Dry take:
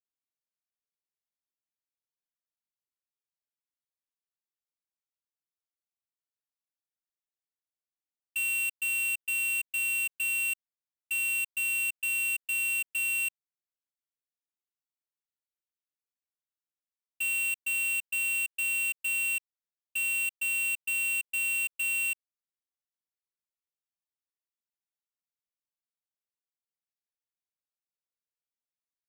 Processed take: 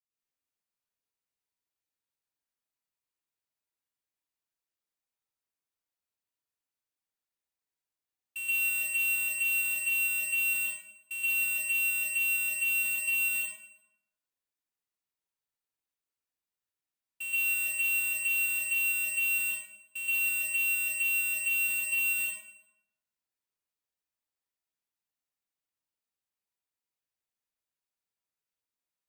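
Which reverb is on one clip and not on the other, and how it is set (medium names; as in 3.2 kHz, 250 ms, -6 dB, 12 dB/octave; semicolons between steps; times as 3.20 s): plate-style reverb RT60 0.97 s, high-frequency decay 0.65×, pre-delay 110 ms, DRR -9.5 dB; trim -7 dB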